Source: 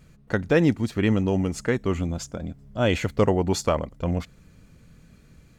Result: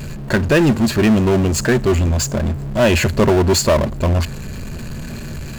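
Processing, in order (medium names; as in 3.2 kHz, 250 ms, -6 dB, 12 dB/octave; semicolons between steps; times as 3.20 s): rippled EQ curve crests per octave 1.4, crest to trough 9 dB; power-law waveshaper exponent 0.5; trim +1.5 dB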